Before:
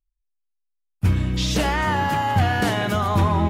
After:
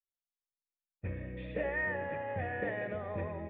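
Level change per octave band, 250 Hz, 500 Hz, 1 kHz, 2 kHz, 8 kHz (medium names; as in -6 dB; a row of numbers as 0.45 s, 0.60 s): -19.0 dB, -9.0 dB, -20.5 dB, -11.0 dB, under -40 dB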